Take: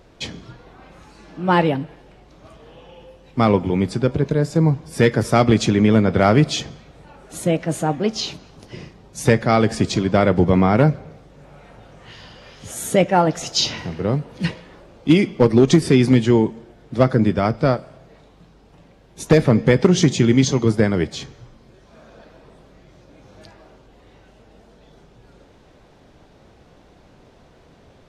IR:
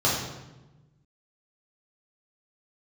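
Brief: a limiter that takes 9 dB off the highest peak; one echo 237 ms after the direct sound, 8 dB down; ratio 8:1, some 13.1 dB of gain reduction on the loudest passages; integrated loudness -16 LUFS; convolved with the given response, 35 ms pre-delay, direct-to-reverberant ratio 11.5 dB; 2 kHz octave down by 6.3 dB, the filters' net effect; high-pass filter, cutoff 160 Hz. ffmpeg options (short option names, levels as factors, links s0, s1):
-filter_complex "[0:a]highpass=160,equalizer=f=2000:t=o:g=-8,acompressor=threshold=0.0708:ratio=8,alimiter=limit=0.112:level=0:latency=1,aecho=1:1:237:0.398,asplit=2[s0][s1];[1:a]atrim=start_sample=2205,adelay=35[s2];[s1][s2]afir=irnorm=-1:irlink=0,volume=0.0473[s3];[s0][s3]amix=inputs=2:normalize=0,volume=5.01"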